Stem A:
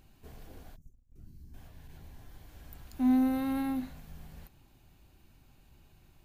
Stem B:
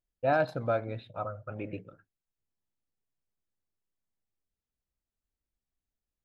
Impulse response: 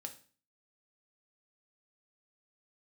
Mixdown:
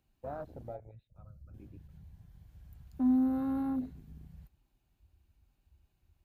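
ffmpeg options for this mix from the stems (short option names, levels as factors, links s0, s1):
-filter_complex "[0:a]volume=1.12[s0];[1:a]volume=0.224[s1];[s0][s1]amix=inputs=2:normalize=0,afwtdn=0.0112,highpass=53,acrossover=split=280|3000[s2][s3][s4];[s3]acompressor=threshold=0.0141:ratio=6[s5];[s2][s5][s4]amix=inputs=3:normalize=0"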